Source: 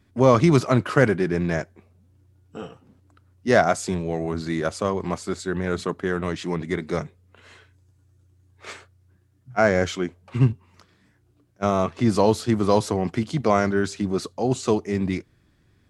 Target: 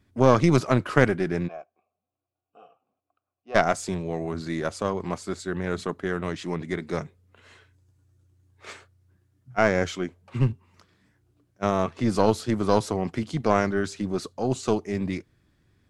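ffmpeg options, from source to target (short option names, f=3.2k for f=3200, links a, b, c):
-filter_complex "[0:a]asplit=3[a][b][c];[a]afade=t=out:st=1.47:d=0.02[d];[b]asplit=3[e][f][g];[e]bandpass=f=730:t=q:w=8,volume=0dB[h];[f]bandpass=f=1.09k:t=q:w=8,volume=-6dB[i];[g]bandpass=f=2.44k:t=q:w=8,volume=-9dB[j];[h][i][j]amix=inputs=3:normalize=0,afade=t=in:st=1.47:d=0.02,afade=t=out:st=3.54:d=0.02[k];[c]afade=t=in:st=3.54:d=0.02[l];[d][k][l]amix=inputs=3:normalize=0,aeval=exprs='0.794*(cos(1*acos(clip(val(0)/0.794,-1,1)))-cos(1*PI/2))+0.282*(cos(2*acos(clip(val(0)/0.794,-1,1)))-cos(2*PI/2))':c=same,volume=-3.5dB"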